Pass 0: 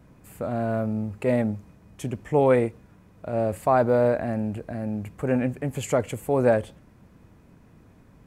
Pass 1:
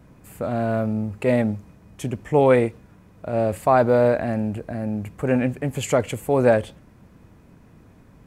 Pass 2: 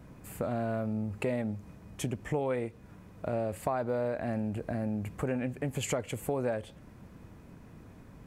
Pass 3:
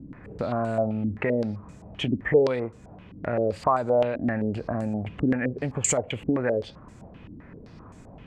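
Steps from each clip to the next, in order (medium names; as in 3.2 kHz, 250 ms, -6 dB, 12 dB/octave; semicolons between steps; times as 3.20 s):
dynamic bell 3.4 kHz, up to +4 dB, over -44 dBFS, Q 0.81; trim +3 dB
compression 5:1, threshold -29 dBFS, peak gain reduction 15.5 dB; trim -1 dB
step-sequenced low-pass 7.7 Hz 280–7600 Hz; trim +4 dB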